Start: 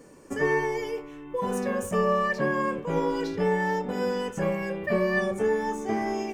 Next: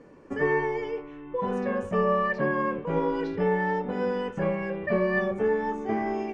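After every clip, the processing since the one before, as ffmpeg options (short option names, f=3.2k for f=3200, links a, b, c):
-af "lowpass=2.7k"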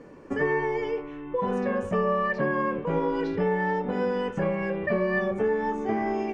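-af "acompressor=threshold=-29dB:ratio=2,volume=4dB"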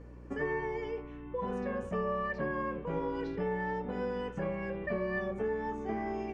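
-af "aeval=exprs='val(0)+0.01*(sin(2*PI*60*n/s)+sin(2*PI*2*60*n/s)/2+sin(2*PI*3*60*n/s)/3+sin(2*PI*4*60*n/s)/4+sin(2*PI*5*60*n/s)/5)':c=same,volume=-8.5dB"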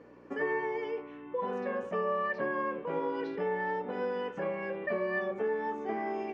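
-af "highpass=300,lowpass=4.8k,volume=3dB"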